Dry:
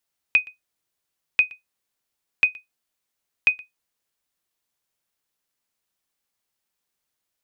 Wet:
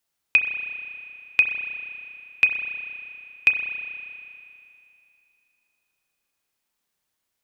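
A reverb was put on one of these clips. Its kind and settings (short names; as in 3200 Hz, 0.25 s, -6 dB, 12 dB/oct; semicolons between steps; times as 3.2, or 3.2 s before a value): spring tank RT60 2.7 s, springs 31 ms, chirp 65 ms, DRR 4 dB; gain +1.5 dB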